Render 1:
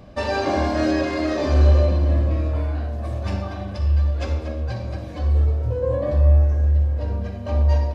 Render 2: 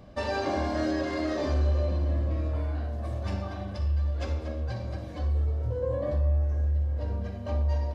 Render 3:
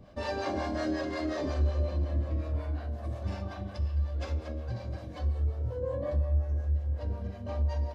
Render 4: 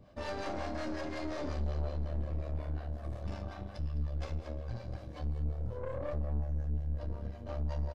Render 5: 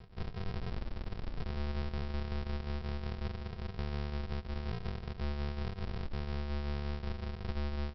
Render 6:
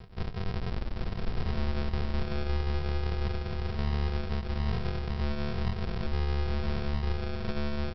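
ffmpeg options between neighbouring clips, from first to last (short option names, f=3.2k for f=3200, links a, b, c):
-af "bandreject=f=2.5k:w=17,acompressor=threshold=-20dB:ratio=2,volume=-5.5dB"
-filter_complex "[0:a]acrossover=split=480[a][b];[a]aeval=exprs='val(0)*(1-0.7/2+0.7/2*cos(2*PI*5.5*n/s))':c=same[c];[b]aeval=exprs='val(0)*(1-0.7/2-0.7/2*cos(2*PI*5.5*n/s))':c=same[d];[c][d]amix=inputs=2:normalize=0"
-filter_complex "[0:a]aeval=exprs='(tanh(39.8*val(0)+0.75)-tanh(0.75))/39.8':c=same,asplit=2[a][b];[b]adelay=27,volume=-14dB[c];[a][c]amix=inputs=2:normalize=0,aecho=1:1:207:0.133,volume=-1dB"
-af "acompressor=threshold=-37dB:ratio=6,aresample=11025,acrusher=samples=38:mix=1:aa=0.000001,aresample=44100,volume=4.5dB"
-af "aecho=1:1:811:0.631,volume=5.5dB"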